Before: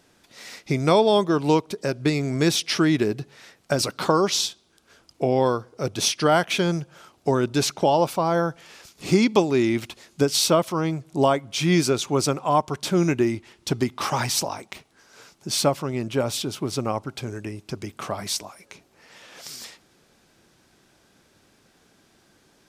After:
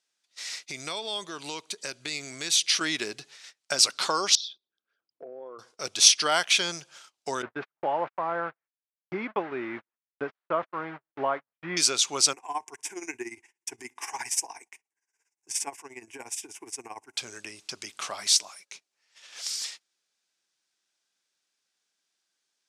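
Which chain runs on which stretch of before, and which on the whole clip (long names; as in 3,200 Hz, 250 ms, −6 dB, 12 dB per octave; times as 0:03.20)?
0:00.63–0:02.81: parametric band 780 Hz −4 dB 2.8 octaves + notch filter 5,300 Hz, Q 8.7 + downward compressor 10 to 1, threshold −22 dBFS
0:04.35–0:05.59: spectral envelope exaggerated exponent 2 + downward compressor 2.5 to 1, threshold −31 dBFS + high-frequency loss of the air 260 metres
0:07.42–0:11.77: linear delta modulator 64 kbit/s, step −25 dBFS + low-pass filter 1,700 Hz 24 dB per octave + noise gate −27 dBFS, range −54 dB
0:12.33–0:17.17: parametric band 3,300 Hz −12.5 dB 0.49 octaves + amplitude tremolo 17 Hz, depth 79% + phaser with its sweep stopped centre 860 Hz, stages 8
whole clip: noise gate −46 dBFS, range −21 dB; meter weighting curve ITU-R 468; level −5 dB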